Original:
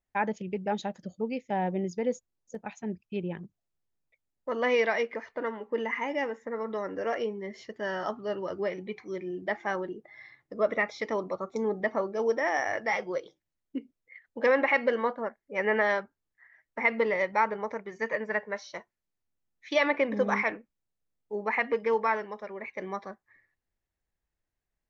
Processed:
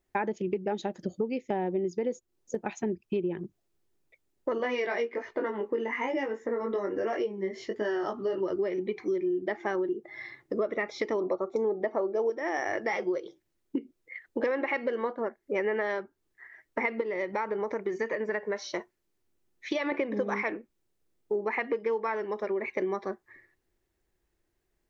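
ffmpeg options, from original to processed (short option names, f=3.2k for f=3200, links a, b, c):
-filter_complex "[0:a]asettb=1/sr,asplit=3[a][b][c];[a]atrim=end=4.584[d];[b]atrim=start=4.58:end=8.43,asetpts=PTS-STARTPTS,afade=t=in:d=0.004:c=qsin,afade=t=out:st=3.846:d=0.004:c=qsin,flanger=delay=18.5:depth=3.1:speed=1.2[e];[c]atrim=start=8.426[f];[d][e]acrossfade=d=0.004:c1=hsin:c2=qsin[g];[g][f]acrossfade=d=0.004:c1=qsin:c2=hsin,asettb=1/sr,asplit=3[h][i][j];[h]atrim=end=11.214[k];[i]atrim=start=11.21:end=12.3,asetpts=PTS-STARTPTS,afade=t=in:d=0.004:c=qsin,afade=t=out:st=1.086:d=0.004:c=qsin,equalizer=f=670:t=o:w=1.6:g=8.5[l];[j]atrim=start=12.296[m];[k][l]acrossfade=d=0.004:c1=hsin:c2=qsin[n];[n][m]acrossfade=d=0.004:c1=qsin:c2=hsin,asettb=1/sr,asplit=3[o][p][q];[o]atrim=end=17.014[r];[p]atrim=start=17.01:end=19.92,asetpts=PTS-STARTPTS,afade=t=in:d=0.004:c=qsin,afade=t=out:st=2.906:d=0.004:c=qsin,acompressor=threshold=-39dB:ratio=1.5:attack=3.2:release=140:knee=1:detection=peak[s];[q]atrim=start=19.916[t];[r][s]acrossfade=d=0.004:c1=hsin:c2=qsin[u];[u][t]acrossfade=d=0.004:c1=qsin:c2=hsin,equalizer=f=360:t=o:w=0.49:g=12.5,acompressor=threshold=-35dB:ratio=6,volume=7.5dB"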